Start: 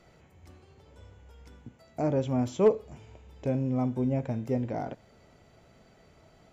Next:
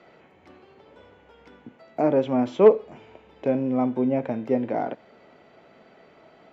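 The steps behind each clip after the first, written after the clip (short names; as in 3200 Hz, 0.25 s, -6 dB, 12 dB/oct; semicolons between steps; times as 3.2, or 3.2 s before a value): three-band isolator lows -22 dB, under 200 Hz, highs -24 dB, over 3900 Hz; gain +8 dB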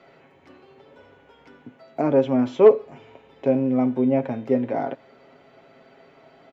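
comb 7.4 ms, depth 52%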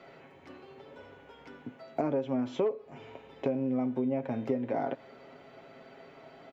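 compressor 8:1, threshold -27 dBFS, peak gain reduction 19 dB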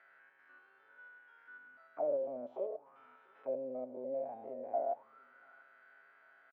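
stepped spectrum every 0.1 s; echo 0.691 s -18 dB; auto-wah 580–1700 Hz, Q 10, down, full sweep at -28.5 dBFS; gain +6 dB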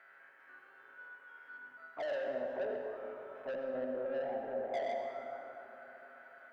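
soft clip -39.5 dBFS, distortion -8 dB; reverb RT60 3.7 s, pre-delay 68 ms, DRR 1.5 dB; gain +4 dB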